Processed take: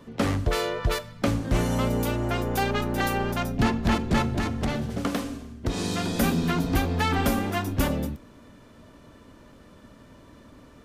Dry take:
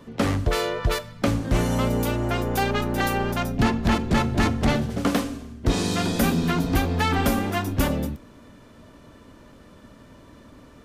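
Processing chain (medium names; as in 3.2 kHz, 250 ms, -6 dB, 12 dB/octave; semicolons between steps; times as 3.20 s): 4.34–6.18 s: compression 5:1, threshold -21 dBFS, peak gain reduction 6 dB; trim -2 dB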